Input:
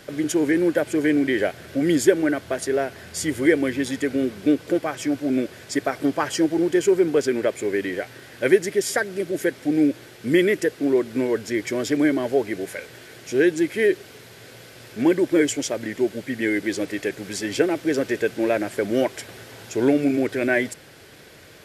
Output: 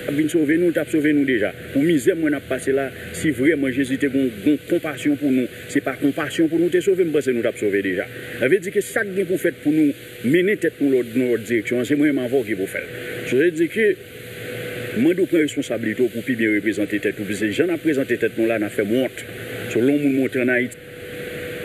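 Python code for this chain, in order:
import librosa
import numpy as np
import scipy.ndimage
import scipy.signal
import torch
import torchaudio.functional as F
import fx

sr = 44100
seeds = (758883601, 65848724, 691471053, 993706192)

y = fx.fixed_phaser(x, sr, hz=2300.0, stages=4)
y = y + 10.0 ** (-50.0 / 20.0) * np.sin(2.0 * np.pi * 490.0 * np.arange(len(y)) / sr)
y = fx.band_squash(y, sr, depth_pct=70)
y = y * librosa.db_to_amplitude(4.0)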